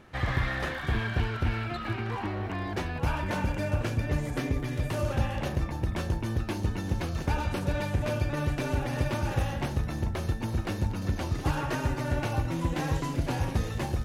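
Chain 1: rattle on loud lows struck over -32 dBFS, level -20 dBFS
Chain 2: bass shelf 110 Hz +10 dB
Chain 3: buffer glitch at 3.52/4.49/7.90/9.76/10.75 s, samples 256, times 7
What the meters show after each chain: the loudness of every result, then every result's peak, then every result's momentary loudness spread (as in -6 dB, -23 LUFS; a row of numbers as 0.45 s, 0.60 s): -29.0 LUFS, -26.5 LUFS, -30.5 LUFS; -12.5 dBFS, -9.0 dBFS, -15.0 dBFS; 2 LU, 3 LU, 3 LU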